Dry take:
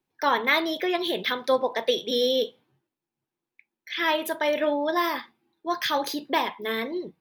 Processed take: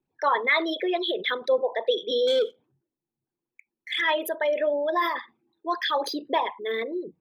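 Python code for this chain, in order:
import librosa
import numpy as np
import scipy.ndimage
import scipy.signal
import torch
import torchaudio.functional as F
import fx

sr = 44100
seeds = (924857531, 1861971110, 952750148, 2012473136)

y = fx.envelope_sharpen(x, sr, power=2.0)
y = fx.leveller(y, sr, passes=1, at=(2.27, 4.01))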